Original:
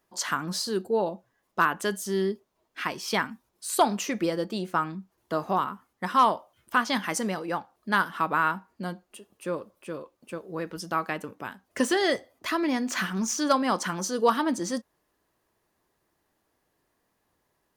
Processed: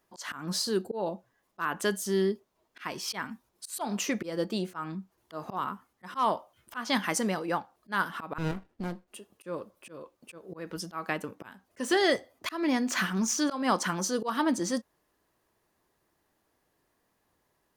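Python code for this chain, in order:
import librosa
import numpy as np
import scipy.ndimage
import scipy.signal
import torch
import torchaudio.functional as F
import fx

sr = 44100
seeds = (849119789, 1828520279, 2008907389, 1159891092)

y = fx.auto_swell(x, sr, attack_ms=188.0)
y = fx.running_max(y, sr, window=33, at=(8.38, 9.08))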